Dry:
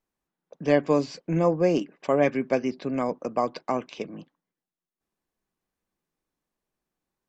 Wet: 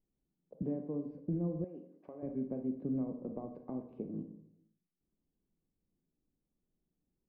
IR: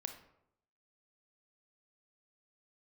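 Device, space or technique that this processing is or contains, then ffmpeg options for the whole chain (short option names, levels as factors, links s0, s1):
television next door: -filter_complex "[0:a]acompressor=threshold=0.0158:ratio=4,lowpass=290[s0];[1:a]atrim=start_sample=2205[s1];[s0][s1]afir=irnorm=-1:irlink=0,asettb=1/sr,asplit=3[s2][s3][s4];[s2]atrim=end=0.624[s5];[s3]atrim=start=0.62:end=1.06,asetpts=PTS-STARTPTS,afade=t=in:d=0.004:c=qsin,afade=t=out:st=0.436:d=0.004:c=qsin,highpass=150[s6];[s4]atrim=start=1.056[s7];[s5][s6]acrossfade=d=0.004:c1=hsin:c2=qsin[s8];[s8][s7]acrossfade=d=0.004:c1=qsin:c2=hsin,asettb=1/sr,asplit=3[s9][s10][s11];[s9]atrim=end=1.644[s12];[s10]atrim=start=1.64:end=2.23,asetpts=PTS-STARTPTS,afade=t=in:d=0.004:c=qsin,afade=t=out:st=0.586:d=0.004:c=qsin,highpass=f=1100:p=1[s13];[s11]atrim=start=2.226[s14];[s12][s13]acrossfade=d=0.004:c1=hsin:c2=qsin[s15];[s15][s14]acrossfade=d=0.004:c1=qsin:c2=hsin,volume=2.37"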